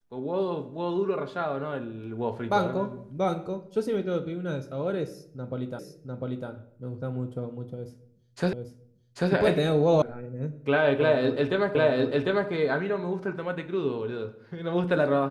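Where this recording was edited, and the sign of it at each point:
5.79 repeat of the last 0.7 s
8.53 repeat of the last 0.79 s
10.02 sound cut off
11.75 repeat of the last 0.75 s

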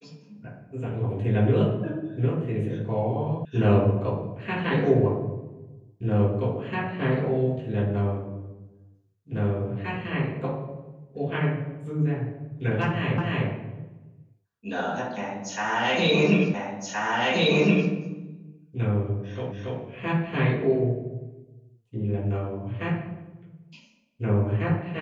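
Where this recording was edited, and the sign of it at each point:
3.45 sound cut off
13.18 repeat of the last 0.3 s
16.54 repeat of the last 1.37 s
19.52 repeat of the last 0.28 s

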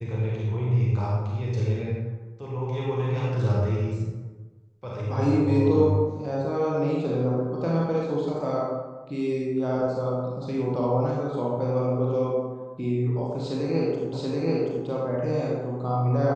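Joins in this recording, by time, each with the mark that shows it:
14.13 repeat of the last 0.73 s

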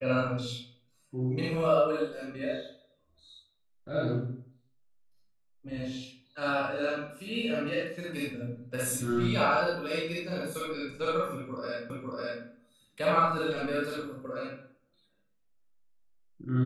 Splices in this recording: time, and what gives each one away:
11.9 repeat of the last 0.55 s

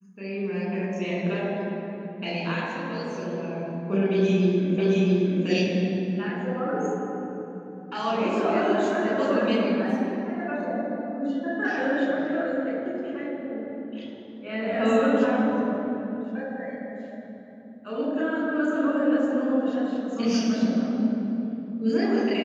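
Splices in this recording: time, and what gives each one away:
4.78 repeat of the last 0.67 s

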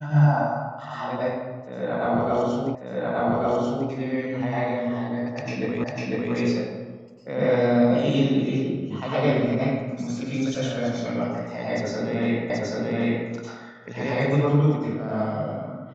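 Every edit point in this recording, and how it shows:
2.75 repeat of the last 1.14 s
5.84 repeat of the last 0.5 s
12.5 repeat of the last 0.78 s

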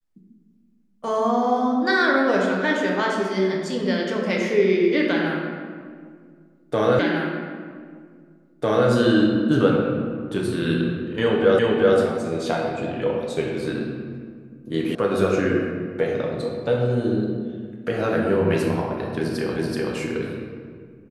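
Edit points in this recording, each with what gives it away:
6.99 repeat of the last 1.9 s
11.59 repeat of the last 0.38 s
14.95 sound cut off
19.56 repeat of the last 0.38 s

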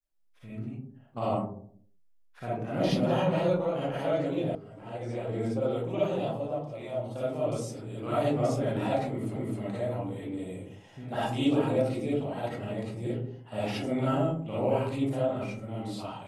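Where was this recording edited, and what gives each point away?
4.55 sound cut off
9.36 repeat of the last 0.26 s

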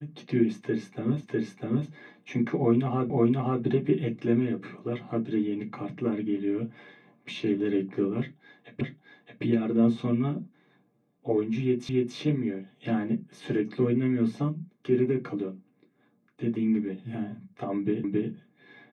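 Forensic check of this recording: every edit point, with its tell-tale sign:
1.23 repeat of the last 0.65 s
3.1 repeat of the last 0.53 s
8.81 repeat of the last 0.62 s
11.89 repeat of the last 0.28 s
18.04 repeat of the last 0.27 s

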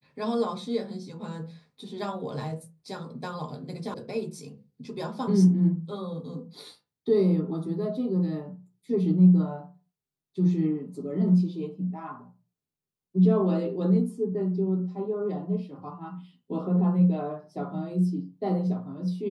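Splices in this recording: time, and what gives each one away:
3.94 sound cut off

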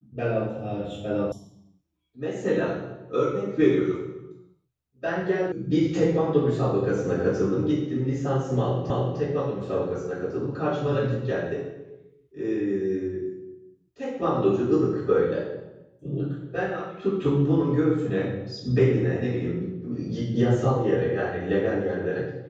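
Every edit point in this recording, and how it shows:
1.32 sound cut off
5.52 sound cut off
8.9 repeat of the last 0.3 s

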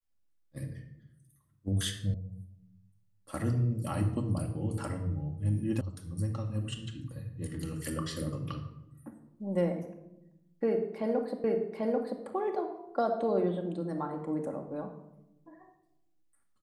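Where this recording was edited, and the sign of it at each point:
2.14 sound cut off
5.81 sound cut off
11.44 repeat of the last 0.79 s

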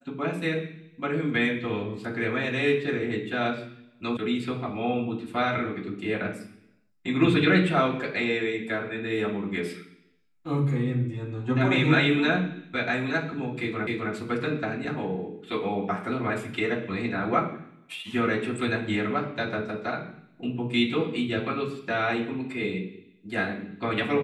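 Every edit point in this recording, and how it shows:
4.17 sound cut off
13.87 repeat of the last 0.26 s

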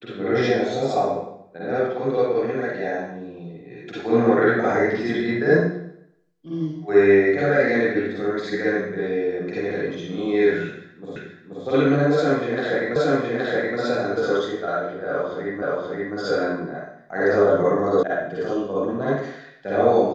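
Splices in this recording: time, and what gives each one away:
11.16 repeat of the last 0.48 s
12.96 repeat of the last 0.82 s
15.62 repeat of the last 0.53 s
18.03 sound cut off

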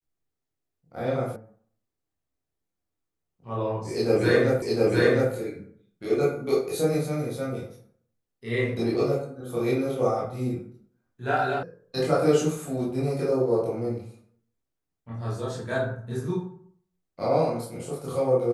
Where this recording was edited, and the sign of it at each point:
1.36 sound cut off
4.62 repeat of the last 0.71 s
11.63 sound cut off

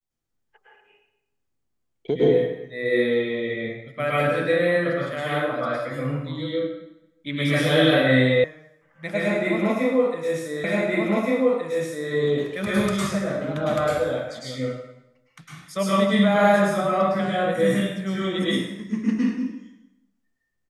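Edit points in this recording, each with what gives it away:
8.44 sound cut off
10.64 repeat of the last 1.47 s

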